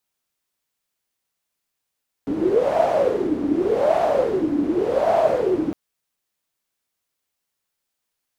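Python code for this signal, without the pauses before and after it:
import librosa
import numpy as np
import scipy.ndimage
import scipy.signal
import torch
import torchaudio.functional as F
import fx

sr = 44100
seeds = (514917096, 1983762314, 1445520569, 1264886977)

y = fx.wind(sr, seeds[0], length_s=3.46, low_hz=290.0, high_hz=670.0, q=11.0, gusts=3, swing_db=4.5)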